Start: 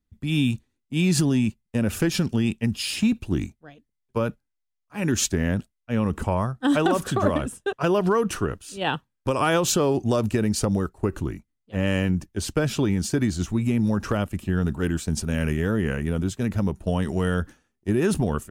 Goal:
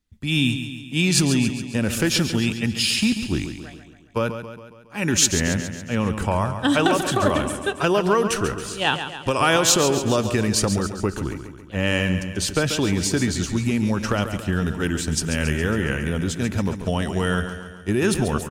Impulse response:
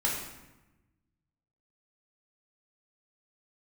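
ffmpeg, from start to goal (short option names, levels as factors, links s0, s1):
-filter_complex "[0:a]equalizer=f=4200:w=0.31:g=7.5,aecho=1:1:138|276|414|552|690|828:0.335|0.184|0.101|0.0557|0.0307|0.0169,asplit=2[s0][s1];[1:a]atrim=start_sample=2205[s2];[s1][s2]afir=irnorm=-1:irlink=0,volume=0.0376[s3];[s0][s3]amix=inputs=2:normalize=0"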